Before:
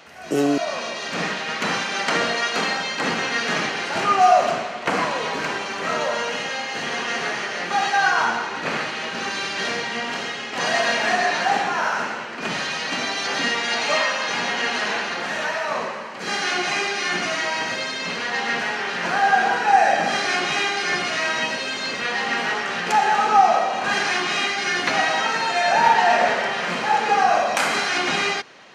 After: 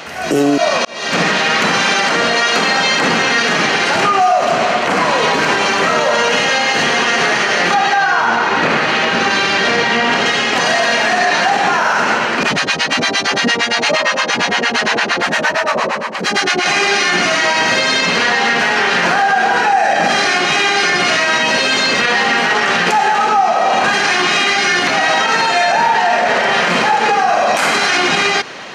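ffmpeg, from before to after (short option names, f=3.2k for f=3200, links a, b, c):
-filter_complex "[0:a]asettb=1/sr,asplit=3[a][b][c];[a]atrim=end=7.744[d];[b]atrim=start=7.74:end=10.26,asetpts=PTS-STARTPTS,afade=t=in:d=0.004:c=qsin,afade=t=out:st=2.516:d=0.004:c=qsin,lowpass=f=3.8k:p=1[e];[c]atrim=start=10.256[f];[d][e]acrossfade=d=0.004:c1=hsin:c2=qsin[g];[g][f]acrossfade=d=0.004:c1=qsin:c2=hsin,asettb=1/sr,asplit=3[h][i][j];[h]atrim=end=12.434[k];[i]atrim=start=12.43:end=16.66,asetpts=PTS-STARTPTS,afade=t=in:d=0.004:c=qsin,afade=t=out:st=4.226:d=0.004:c=qsin,acrossover=split=610[l][m];[l]aeval=exprs='val(0)*(1-1/2+1/2*cos(2*PI*8.7*n/s))':c=same[n];[m]aeval=exprs='val(0)*(1-1/2-1/2*cos(2*PI*8.7*n/s))':c=same[o];[n][o]amix=inputs=2:normalize=0[p];[j]atrim=start=16.656[q];[k][p]acrossfade=d=0.004:c1=hsin:c2=qsin[r];[r][q]acrossfade=d=0.004:c1=qsin:c2=hsin,asplit=2[s][t];[s]atrim=end=0.85,asetpts=PTS-STARTPTS,afade=t=out:st=0.846:d=0.004:c=hsin[u];[t]atrim=start=0.85,asetpts=PTS-STARTPTS,afade=t=in:d=0.46[v];[u][v]concat=n=2:v=0:a=1,acompressor=threshold=-22dB:ratio=6,alimiter=level_in=20.5dB:limit=-1dB:release=50:level=0:latency=1,volume=-4dB"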